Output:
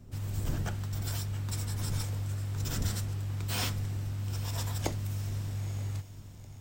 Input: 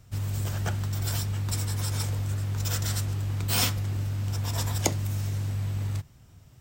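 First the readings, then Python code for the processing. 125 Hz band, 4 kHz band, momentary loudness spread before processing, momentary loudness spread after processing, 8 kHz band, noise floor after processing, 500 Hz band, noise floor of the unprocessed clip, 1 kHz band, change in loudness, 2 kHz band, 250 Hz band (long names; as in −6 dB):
−5.0 dB, −7.0 dB, 4 LU, 4 LU, −8.0 dB, −48 dBFS, −5.5 dB, −53 dBFS, −6.0 dB, −5.5 dB, −6.0 dB, −4.0 dB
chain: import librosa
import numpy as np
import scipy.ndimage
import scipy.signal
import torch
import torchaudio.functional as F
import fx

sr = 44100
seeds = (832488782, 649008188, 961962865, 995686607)

y = fx.dmg_wind(x, sr, seeds[0], corner_hz=130.0, level_db=-36.0)
y = fx.echo_diffused(y, sr, ms=910, feedback_pct=41, wet_db=-16.0)
y = fx.slew_limit(y, sr, full_power_hz=300.0)
y = F.gain(torch.from_numpy(y), -6.0).numpy()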